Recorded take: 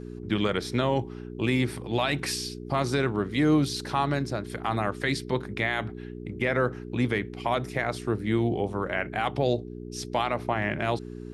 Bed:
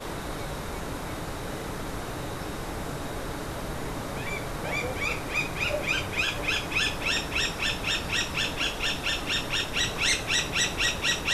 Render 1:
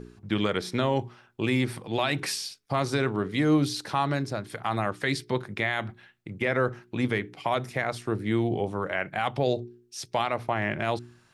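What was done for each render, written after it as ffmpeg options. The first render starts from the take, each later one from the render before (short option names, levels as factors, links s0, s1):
-af "bandreject=f=60:t=h:w=4,bandreject=f=120:t=h:w=4,bandreject=f=180:t=h:w=4,bandreject=f=240:t=h:w=4,bandreject=f=300:t=h:w=4,bandreject=f=360:t=h:w=4,bandreject=f=420:t=h:w=4"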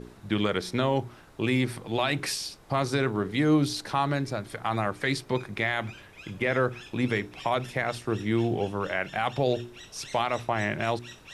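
-filter_complex "[1:a]volume=0.0944[s0];[0:a][s0]amix=inputs=2:normalize=0"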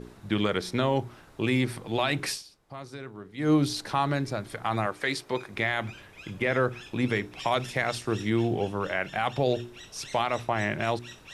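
-filter_complex "[0:a]asettb=1/sr,asplit=3[s0][s1][s2];[s0]atrim=end=4.864[s3];[s1]atrim=start=4.86:end=5.54,asetpts=PTS-STARTPTS,afade=t=in:d=0.004:c=qsin,afade=t=out:st=0.676:d=0.004:c=qsin,bass=f=250:g=-10,treble=f=4000:g=0[s4];[s2]atrim=start=5.536[s5];[s3][s4]acrossfade=d=0.004:c1=hsin:c2=qsin[s6];[s6][s5]acrossfade=d=0.004:c1=qsin:c2=hsin,asettb=1/sr,asplit=3[s7][s8][s9];[s7]atrim=end=7.394[s10];[s8]atrim=start=7.39:end=8.3,asetpts=PTS-STARTPTS,afade=t=in:d=0.004:c=qsin,afade=t=out:st=0.906:d=0.004:c=qsin,equalizer=f=6000:w=0.52:g=6[s11];[s9]atrim=start=8.296[s12];[s10][s11]acrossfade=d=0.004:c1=hsin:c2=qsin[s13];[s13][s12]acrossfade=d=0.004:c1=qsin:c2=hsin,asplit=3[s14][s15][s16];[s14]atrim=end=2.43,asetpts=PTS-STARTPTS,afade=t=out:st=2.3:d=0.13:silence=0.188365[s17];[s15]atrim=start=2.43:end=3.37,asetpts=PTS-STARTPTS,volume=0.188[s18];[s16]atrim=start=3.37,asetpts=PTS-STARTPTS,afade=t=in:d=0.13:silence=0.188365[s19];[s17][s18][s19]concat=n=3:v=0:a=1"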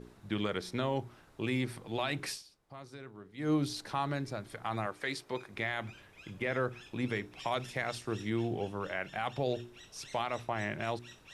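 -af "volume=0.422"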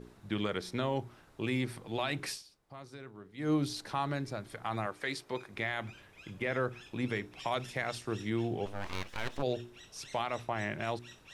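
-filter_complex "[0:a]asplit=3[s0][s1][s2];[s0]afade=t=out:st=8.65:d=0.02[s3];[s1]aeval=exprs='abs(val(0))':c=same,afade=t=in:st=8.65:d=0.02,afade=t=out:st=9.41:d=0.02[s4];[s2]afade=t=in:st=9.41:d=0.02[s5];[s3][s4][s5]amix=inputs=3:normalize=0"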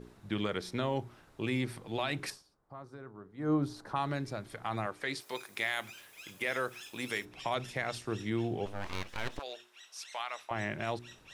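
-filter_complex "[0:a]asettb=1/sr,asplit=3[s0][s1][s2];[s0]atrim=end=2.304[s3];[s1]atrim=start=2.3:end=3.96,asetpts=PTS-STARTPTS,afade=t=in:d=0.004:c=qsin,afade=t=out:st=1.656:d=0.004:c=qsin,highshelf=f=1800:t=q:w=1.5:g=-10[s4];[s2]atrim=start=3.956[s5];[s3][s4]acrossfade=d=0.004:c1=hsin:c2=qsin[s6];[s6][s5]acrossfade=d=0.004:c1=qsin:c2=hsin,asplit=3[s7][s8][s9];[s7]afade=t=out:st=5.2:d=0.02[s10];[s8]aemphasis=mode=production:type=riaa,afade=t=in:st=5.2:d=0.02,afade=t=out:st=7.24:d=0.02[s11];[s9]afade=t=in:st=7.24:d=0.02[s12];[s10][s11][s12]amix=inputs=3:normalize=0,asettb=1/sr,asplit=3[s13][s14][s15];[s13]atrim=end=9.394[s16];[s14]atrim=start=9.39:end=10.51,asetpts=PTS-STARTPTS,afade=t=in:d=0.004:c=qsin,afade=t=out:st=1.116:d=0.004:c=qsin,highpass=1000[s17];[s15]atrim=start=10.506[s18];[s16][s17]acrossfade=d=0.004:c1=hsin:c2=qsin[s19];[s19][s18]acrossfade=d=0.004:c1=qsin:c2=hsin"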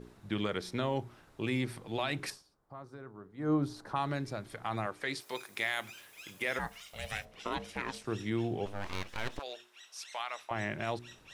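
-filter_complex "[0:a]asplit=3[s0][s1][s2];[s0]afade=t=out:st=6.58:d=0.02[s3];[s1]aeval=exprs='val(0)*sin(2*PI*330*n/s)':c=same,afade=t=in:st=6.58:d=0.02,afade=t=out:st=8.03:d=0.02[s4];[s2]afade=t=in:st=8.03:d=0.02[s5];[s3][s4][s5]amix=inputs=3:normalize=0"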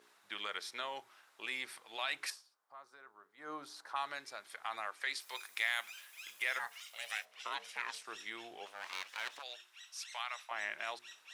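-af "highpass=1100"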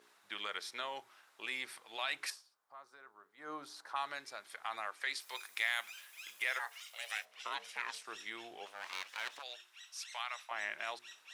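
-filter_complex "[0:a]asettb=1/sr,asplit=3[s0][s1][s2];[s0]atrim=end=6.444[s3];[s1]atrim=start=6.44:end=7.17,asetpts=PTS-STARTPTS,afade=t=in:d=0.004:c=qsin,afade=t=out:st=0.726:d=0.004:c=qsin,highpass=f=330:w=0.5412,highpass=f=330:w=1.3066[s4];[s2]atrim=start=7.166[s5];[s3][s4]acrossfade=d=0.004:c1=hsin:c2=qsin[s6];[s6][s5]acrossfade=d=0.004:c1=qsin:c2=hsin"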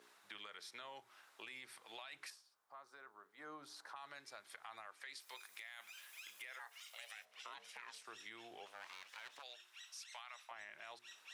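-filter_complex "[0:a]alimiter=level_in=2.11:limit=0.0631:level=0:latency=1:release=19,volume=0.473,acrossover=split=140[s0][s1];[s1]acompressor=threshold=0.00251:ratio=3[s2];[s0][s2]amix=inputs=2:normalize=0"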